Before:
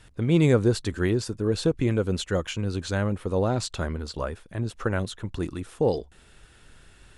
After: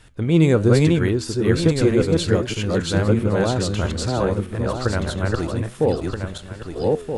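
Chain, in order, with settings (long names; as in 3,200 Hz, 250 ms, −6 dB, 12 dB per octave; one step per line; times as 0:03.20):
feedback delay that plays each chunk backwards 638 ms, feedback 46%, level −0.5 dB
flanger 1.2 Hz, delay 6.3 ms, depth 6.4 ms, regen +86%
level +7.5 dB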